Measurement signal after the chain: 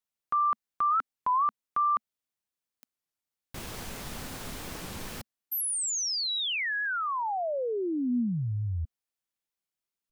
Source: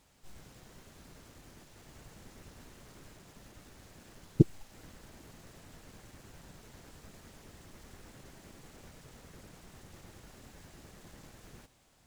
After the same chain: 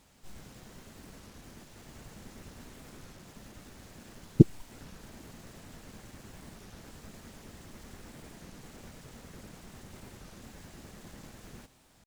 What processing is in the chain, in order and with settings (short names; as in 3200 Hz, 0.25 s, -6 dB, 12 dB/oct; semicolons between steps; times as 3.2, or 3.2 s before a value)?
bell 220 Hz +4.5 dB 0.45 oct; record warp 33 1/3 rpm, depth 250 cents; gain +3.5 dB